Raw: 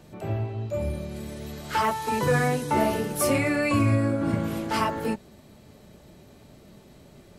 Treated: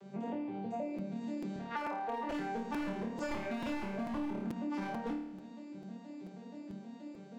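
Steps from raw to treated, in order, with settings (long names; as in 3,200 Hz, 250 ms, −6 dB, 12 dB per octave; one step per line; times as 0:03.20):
vocoder with an arpeggio as carrier minor triad, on G3, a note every 159 ms
0:01.56–0:02.30: band-pass filter 360–2,600 Hz
wave folding −21.5 dBFS
flutter between parallel walls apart 4.6 metres, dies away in 0.56 s
downward compressor 6 to 1, threshold −38 dBFS, peak gain reduction 16.5 dB
regular buffer underruns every 0.44 s, samples 256, repeat, from 0:00.98
level +2 dB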